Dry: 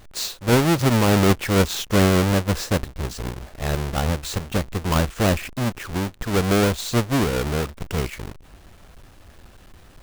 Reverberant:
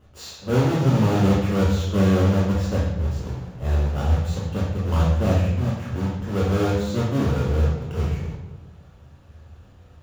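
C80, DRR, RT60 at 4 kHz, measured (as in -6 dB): 4.5 dB, -5.0 dB, 0.80 s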